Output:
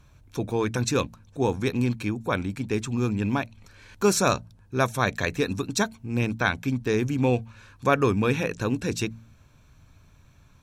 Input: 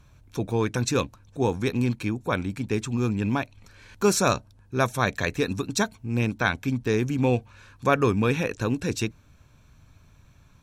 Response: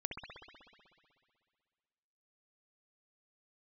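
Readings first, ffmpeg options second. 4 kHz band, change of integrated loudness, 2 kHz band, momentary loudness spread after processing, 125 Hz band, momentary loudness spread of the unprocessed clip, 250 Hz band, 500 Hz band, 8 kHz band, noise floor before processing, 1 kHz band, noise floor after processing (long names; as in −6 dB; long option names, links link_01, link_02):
0.0 dB, 0.0 dB, 0.0 dB, 7 LU, −0.5 dB, 7 LU, 0.0 dB, 0.0 dB, 0.0 dB, −56 dBFS, 0.0 dB, −56 dBFS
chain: -af "bandreject=frequency=56.49:width_type=h:width=4,bandreject=frequency=112.98:width_type=h:width=4,bandreject=frequency=169.47:width_type=h:width=4,bandreject=frequency=225.96:width_type=h:width=4"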